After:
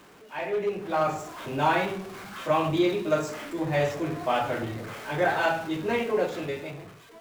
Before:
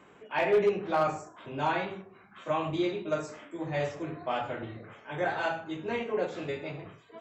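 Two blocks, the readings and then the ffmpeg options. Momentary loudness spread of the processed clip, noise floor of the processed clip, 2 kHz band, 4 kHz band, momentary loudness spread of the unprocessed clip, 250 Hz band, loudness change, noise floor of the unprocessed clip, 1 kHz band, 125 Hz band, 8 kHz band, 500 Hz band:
12 LU, -51 dBFS, +5.0 dB, +5.5 dB, 15 LU, +5.5 dB, +4.0 dB, -56 dBFS, +4.5 dB, +6.0 dB, no reading, +3.0 dB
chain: -af "aeval=exprs='val(0)+0.5*0.00708*sgn(val(0))':c=same,dynaudnorm=f=290:g=7:m=3.98,volume=0.473"

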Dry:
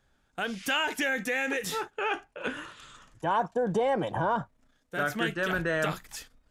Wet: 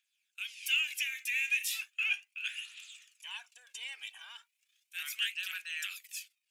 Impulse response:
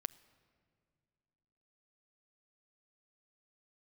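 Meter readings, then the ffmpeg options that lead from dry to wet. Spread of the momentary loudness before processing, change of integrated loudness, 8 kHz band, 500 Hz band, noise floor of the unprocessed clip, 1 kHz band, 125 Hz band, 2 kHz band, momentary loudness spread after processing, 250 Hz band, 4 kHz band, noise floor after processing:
14 LU, -5.0 dB, +0.5 dB, under -40 dB, -70 dBFS, -28.5 dB, under -40 dB, -4.0 dB, 19 LU, under -40 dB, +1.0 dB, -83 dBFS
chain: -af "highpass=f=2500:t=q:w=6.1,dynaudnorm=f=400:g=7:m=1.78,aphaser=in_gain=1:out_gain=1:delay=2.7:decay=0.47:speed=0.36:type=triangular,aderivative,volume=0.631"

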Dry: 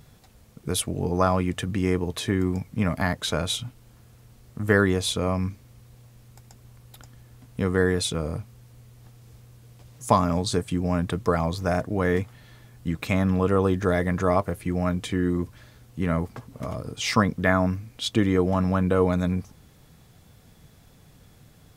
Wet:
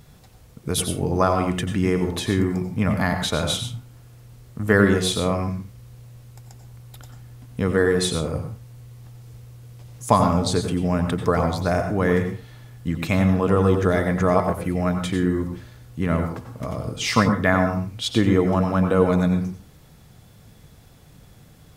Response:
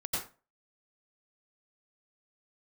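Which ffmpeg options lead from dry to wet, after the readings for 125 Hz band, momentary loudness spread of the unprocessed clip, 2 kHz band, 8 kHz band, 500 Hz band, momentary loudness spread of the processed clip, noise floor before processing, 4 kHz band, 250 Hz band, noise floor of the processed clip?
+3.0 dB, 12 LU, +3.0 dB, +3.0 dB, +3.5 dB, 13 LU, -54 dBFS, +3.0 dB, +3.5 dB, -50 dBFS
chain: -filter_complex "[0:a]asplit=2[s0][s1];[1:a]atrim=start_sample=2205[s2];[s1][s2]afir=irnorm=-1:irlink=0,volume=0.422[s3];[s0][s3]amix=inputs=2:normalize=0"

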